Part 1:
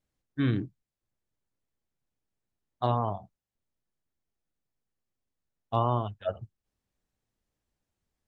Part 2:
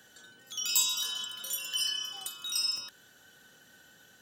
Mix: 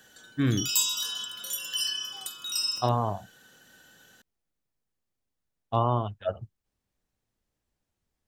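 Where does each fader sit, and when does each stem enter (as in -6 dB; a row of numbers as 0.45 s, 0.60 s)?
+1.5 dB, +1.5 dB; 0.00 s, 0.00 s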